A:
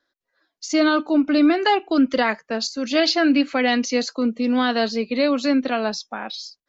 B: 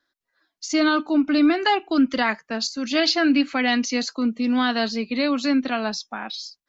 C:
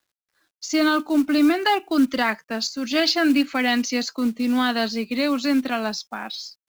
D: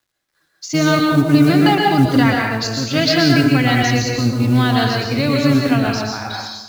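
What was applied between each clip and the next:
bell 510 Hz -7.5 dB 0.71 oct
companded quantiser 6-bit
octaver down 1 oct, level 0 dB; plate-style reverb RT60 0.99 s, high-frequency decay 0.75×, pre-delay 0.105 s, DRR -1 dB; gain +2 dB

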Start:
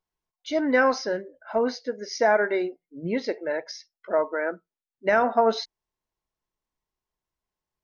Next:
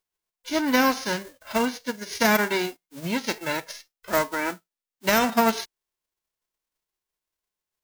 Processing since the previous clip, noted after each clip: spectral whitening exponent 0.3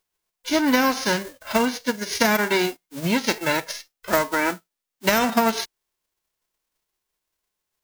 compressor, threshold -22 dBFS, peak gain reduction 7.5 dB; gain +6.5 dB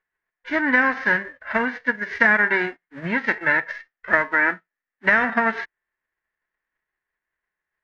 synth low-pass 1800 Hz, resonance Q 7.5; gain -4.5 dB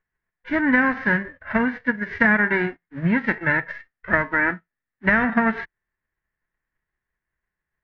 tone controls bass +14 dB, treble -10 dB; gain -1.5 dB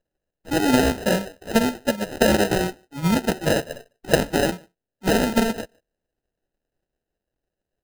speakerphone echo 0.15 s, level -29 dB; sample-and-hold 39×

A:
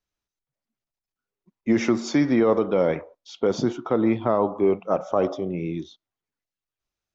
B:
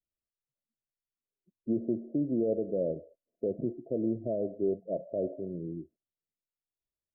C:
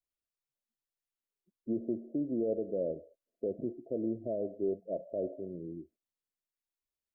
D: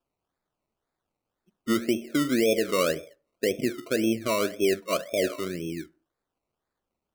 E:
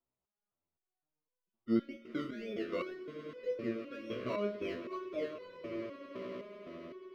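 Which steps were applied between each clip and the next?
Chebyshev low-pass 670 Hz, order 8; gain -9 dB
bell 140 Hz -6 dB 0.93 oct; gain -2.5 dB
decimation with a swept rate 21×, swing 60% 1.9 Hz; reverb RT60 0.40 s, pre-delay 3 ms, DRR 16.5 dB; gain +9 dB
air absorption 300 m; swelling echo 0.1 s, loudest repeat 8, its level -16.5 dB; stepped resonator 3.9 Hz 63–500 Hz; gain -1 dB

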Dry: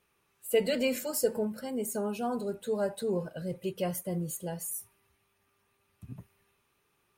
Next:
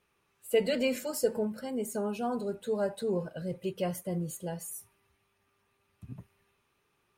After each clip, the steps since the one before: high shelf 9500 Hz -8.5 dB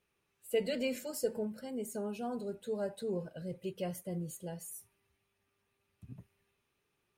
bell 1100 Hz -5 dB 0.97 oct; gain -5 dB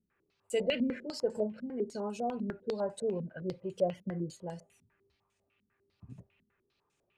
stepped low-pass 10 Hz 230–7400 Hz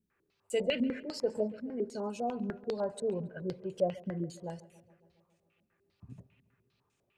darkening echo 0.138 s, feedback 68%, low-pass 3600 Hz, level -20 dB

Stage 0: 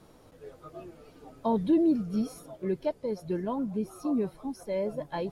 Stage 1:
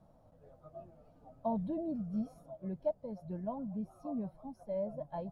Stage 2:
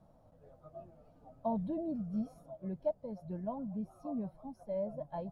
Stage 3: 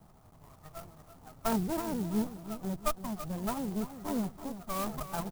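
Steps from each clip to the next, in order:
EQ curve 200 Hz 0 dB, 410 Hz -15 dB, 630 Hz +4 dB, 990 Hz -6 dB, 2200 Hz -17 dB; gain -5 dB
nothing audible
minimum comb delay 1 ms; feedback echo 0.333 s, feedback 36%, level -11.5 dB; clock jitter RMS 0.071 ms; gain +6.5 dB

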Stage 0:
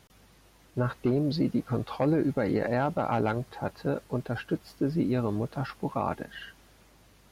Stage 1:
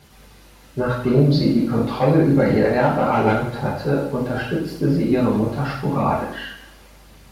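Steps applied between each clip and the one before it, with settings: two-slope reverb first 0.65 s, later 2 s, from -25 dB, DRR -6.5 dB; phaser 0.84 Hz, delay 4.4 ms, feedback 24%; gain +3 dB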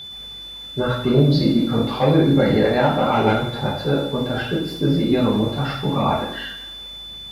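whine 3500 Hz -33 dBFS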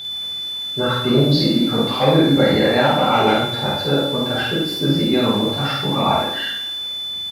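tilt +1.5 dB/oct; doubler 50 ms -2.5 dB; gain +1.5 dB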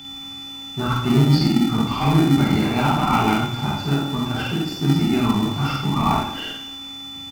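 fixed phaser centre 2600 Hz, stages 8; in parallel at -7 dB: sample-and-hold 41×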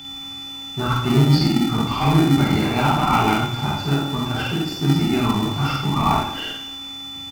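bell 220 Hz -4 dB 0.63 oct; gain +1.5 dB

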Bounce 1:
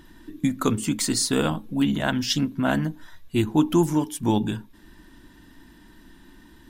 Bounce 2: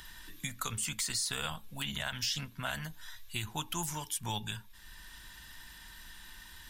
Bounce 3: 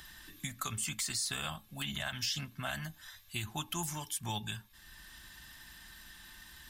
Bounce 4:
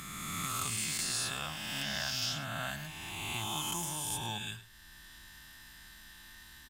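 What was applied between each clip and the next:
passive tone stack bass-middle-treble 10-0-10; limiter -23.5 dBFS, peak gain reduction 10 dB; three-band squash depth 40%; gain +1.5 dB
notch comb 480 Hz
spectral swells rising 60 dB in 2.43 s; echo 0.105 s -15.5 dB; gain -4 dB

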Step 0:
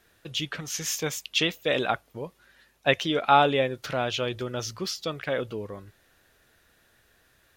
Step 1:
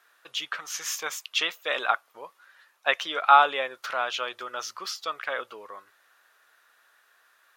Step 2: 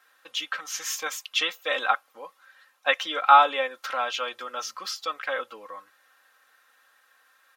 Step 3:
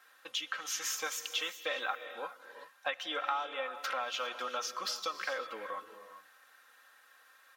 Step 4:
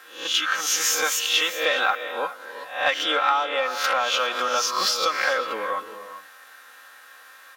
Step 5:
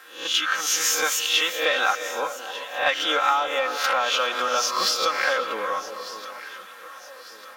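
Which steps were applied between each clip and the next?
HPF 690 Hz 12 dB/oct; bell 1200 Hz +10 dB 0.92 oct; gain -2 dB
comb 3.8 ms, depth 74%; gain -1 dB
compressor 6:1, threshold -33 dBFS, peak gain reduction 21 dB; non-linear reverb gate 0.43 s rising, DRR 10 dB
spectral swells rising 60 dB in 0.47 s; in parallel at -5 dB: soft clip -28 dBFS, distortion -15 dB; on the sum: gain +8.5 dB
echo with dull and thin repeats by turns 0.599 s, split 990 Hz, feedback 64%, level -12 dB

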